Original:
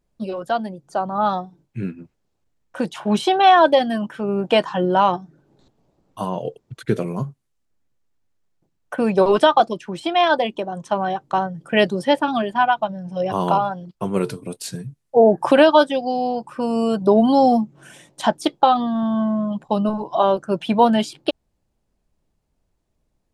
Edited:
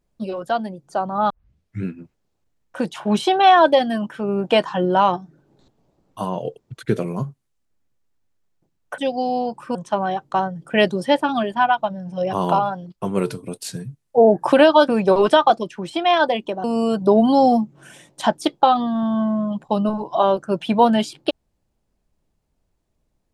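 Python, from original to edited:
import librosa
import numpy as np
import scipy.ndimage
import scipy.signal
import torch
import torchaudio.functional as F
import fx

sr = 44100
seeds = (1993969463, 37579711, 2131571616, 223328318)

y = fx.edit(x, sr, fx.tape_start(start_s=1.3, length_s=0.54),
    fx.swap(start_s=8.98, length_s=1.76, other_s=15.87, other_length_s=0.77), tone=tone)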